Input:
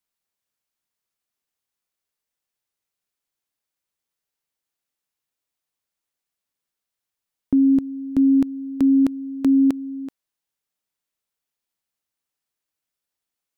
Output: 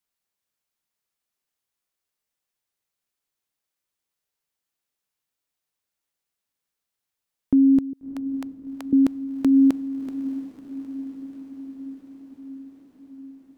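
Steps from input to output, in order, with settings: 7.93–8.93 HPF 660 Hz 24 dB/oct; diffused feedback echo 0.657 s, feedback 71%, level -13.5 dB

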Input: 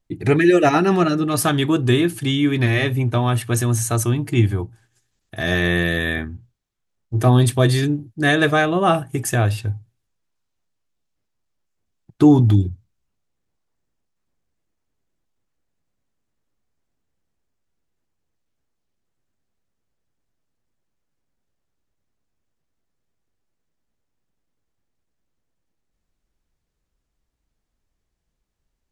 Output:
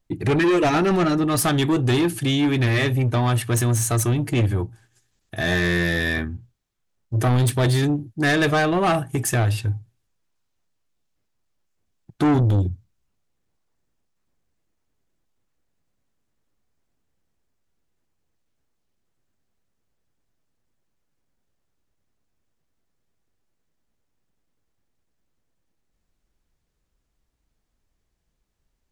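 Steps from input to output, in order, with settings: soft clip -17 dBFS, distortion -9 dB; gain +2 dB

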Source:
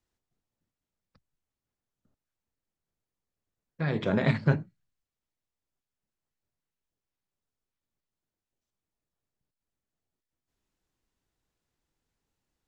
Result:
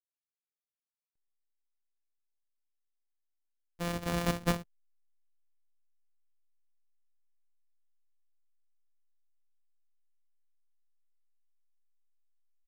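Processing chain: sample sorter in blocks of 256 samples; comb 4.1 ms, depth 37%; backlash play -45 dBFS; gain -6 dB

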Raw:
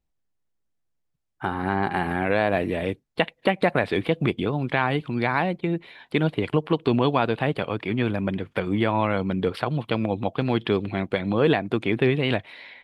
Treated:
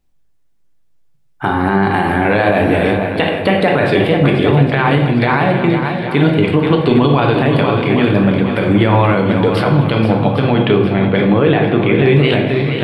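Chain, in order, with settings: 10.42–12.06 LPF 3500 Hz 24 dB/oct; swung echo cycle 0.804 s, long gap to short 1.5:1, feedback 36%, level -9.5 dB; on a send at -3 dB: reverb RT60 0.85 s, pre-delay 7 ms; on the sum: maximiser +11 dB; gain -1 dB

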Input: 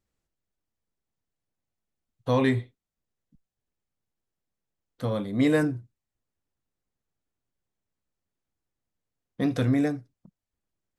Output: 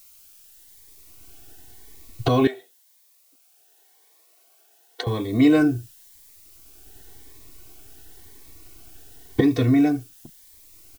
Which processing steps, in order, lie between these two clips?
recorder AGC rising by 23 dB/s; LPF 5300 Hz; notch 1200 Hz, Q 20; comb 2.7 ms, depth 98%; added noise blue -55 dBFS; 2.47–5.07 ladder high-pass 480 Hz, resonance 40%; cascading phaser rising 0.93 Hz; gain +4 dB

